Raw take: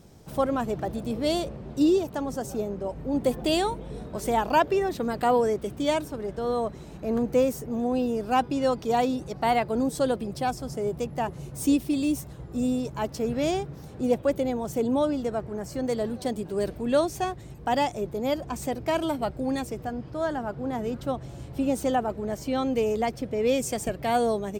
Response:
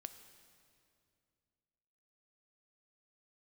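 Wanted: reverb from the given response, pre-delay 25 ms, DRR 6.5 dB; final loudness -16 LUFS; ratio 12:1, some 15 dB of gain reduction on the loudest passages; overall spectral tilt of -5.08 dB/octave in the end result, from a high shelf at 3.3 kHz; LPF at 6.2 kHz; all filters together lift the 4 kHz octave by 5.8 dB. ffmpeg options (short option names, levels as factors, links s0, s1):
-filter_complex "[0:a]lowpass=6200,highshelf=f=3300:g=4.5,equalizer=f=4000:t=o:g=5,acompressor=threshold=0.0251:ratio=12,asplit=2[s0][s1];[1:a]atrim=start_sample=2205,adelay=25[s2];[s1][s2]afir=irnorm=-1:irlink=0,volume=0.841[s3];[s0][s3]amix=inputs=2:normalize=0,volume=10"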